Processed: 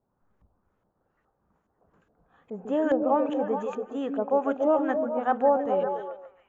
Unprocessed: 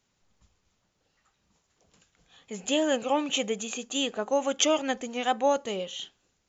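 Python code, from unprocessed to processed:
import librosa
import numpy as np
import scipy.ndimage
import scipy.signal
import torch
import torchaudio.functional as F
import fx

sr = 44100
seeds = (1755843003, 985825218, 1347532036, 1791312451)

p1 = fx.band_shelf(x, sr, hz=3200.0, db=-10.5, octaves=1.7)
p2 = fx.filter_lfo_lowpass(p1, sr, shape='saw_up', hz=2.4, low_hz=650.0, high_hz=2400.0, q=1.4)
y = p2 + fx.echo_stepped(p2, sr, ms=141, hz=310.0, octaves=0.7, feedback_pct=70, wet_db=-1.5, dry=0)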